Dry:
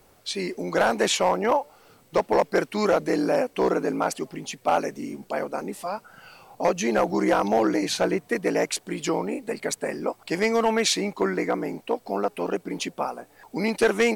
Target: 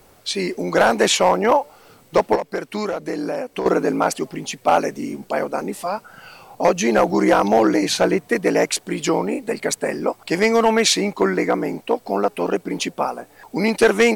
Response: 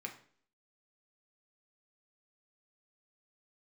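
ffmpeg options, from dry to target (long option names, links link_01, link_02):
-filter_complex "[0:a]asettb=1/sr,asplit=3[link_01][link_02][link_03];[link_01]atrim=end=2.354[link_04];[link_02]atrim=start=2.35:end=3.66,asetpts=PTS-STARTPTS,afade=type=in:duration=0.004:curve=qsin,afade=type=out:start_time=1.306:duration=0.004:curve=qsin,acompressor=threshold=-28dB:ratio=6[link_05];[link_03]atrim=start=3.656[link_06];[link_04][link_05]acrossfade=duration=0.004:curve1=hsin:curve2=qsin[link_07];[link_07][link_06]acrossfade=duration=0.004:curve1=qsin:curve2=hsin,volume=6dB"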